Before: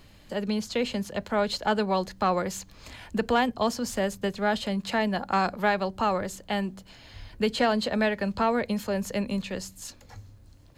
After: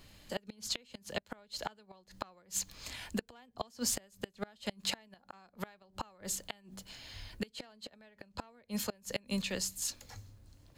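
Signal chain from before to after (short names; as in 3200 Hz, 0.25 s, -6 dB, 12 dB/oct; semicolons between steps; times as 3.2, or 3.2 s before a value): flipped gate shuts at -19 dBFS, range -30 dB; high shelf 2500 Hz +11.5 dB; mismatched tape noise reduction decoder only; gain -5.5 dB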